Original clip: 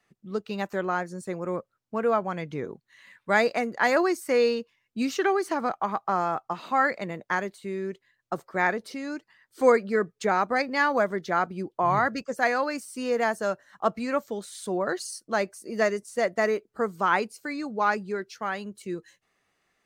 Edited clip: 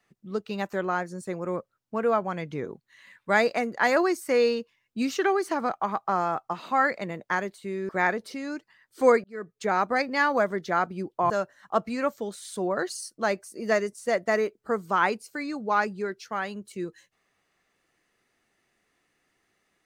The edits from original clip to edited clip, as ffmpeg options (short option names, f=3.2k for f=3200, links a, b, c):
-filter_complex "[0:a]asplit=4[a][b][c][d];[a]atrim=end=7.892[e];[b]atrim=start=8.488:end=9.84,asetpts=PTS-STARTPTS,afade=t=out:st=1.348:d=0.004:c=hsin[f];[c]atrim=start=9.84:end=11.902,asetpts=PTS-STARTPTS,afade=t=in:d=0.55[g];[d]atrim=start=13.398[h];[f][g]concat=n=2:v=0:a=1[i];[e][i]acrossfade=d=0.004:c1=hsin:c2=hsin[j];[j][h]acrossfade=d=0.004:c1=hsin:c2=hsin"